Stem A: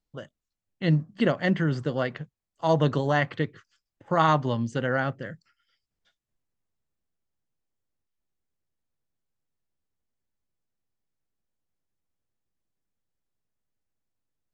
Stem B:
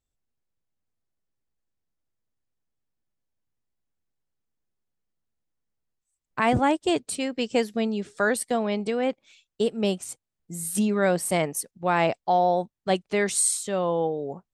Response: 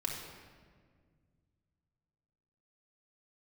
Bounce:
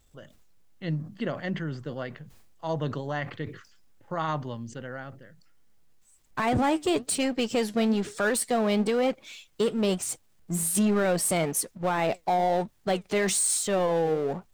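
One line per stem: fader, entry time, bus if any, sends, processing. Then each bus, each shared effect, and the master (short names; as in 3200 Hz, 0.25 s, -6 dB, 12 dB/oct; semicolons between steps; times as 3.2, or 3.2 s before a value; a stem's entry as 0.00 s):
-8.0 dB, 0.00 s, no send, sustainer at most 110 dB/s; auto duck -13 dB, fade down 1.75 s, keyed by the second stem
+2.5 dB, 0.00 s, no send, power-law curve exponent 0.7; flange 1.1 Hz, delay 0.9 ms, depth 6 ms, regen +80%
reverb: off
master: limiter -17.5 dBFS, peak gain reduction 6.5 dB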